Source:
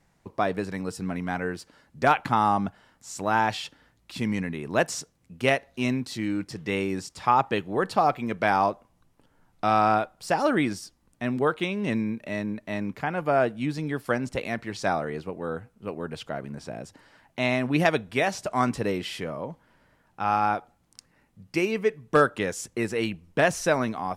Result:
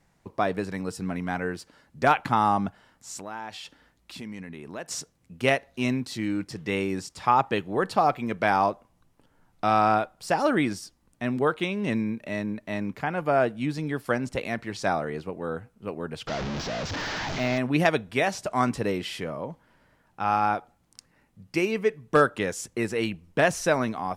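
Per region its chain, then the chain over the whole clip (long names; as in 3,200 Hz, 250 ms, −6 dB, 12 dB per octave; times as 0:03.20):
0:03.18–0:04.91: parametric band 120 Hz −8.5 dB 0.39 octaves + downward compressor 2.5 to 1, threshold −39 dBFS
0:16.27–0:17.58: linear delta modulator 32 kbit/s, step −24.5 dBFS + de-essing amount 90%
whole clip: no processing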